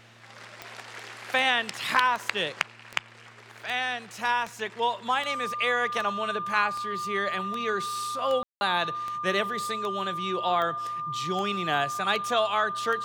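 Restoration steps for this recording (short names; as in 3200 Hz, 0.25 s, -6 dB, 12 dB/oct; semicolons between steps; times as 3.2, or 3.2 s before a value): de-click; de-hum 115.3 Hz, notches 3; notch 1200 Hz, Q 30; room tone fill 8.43–8.61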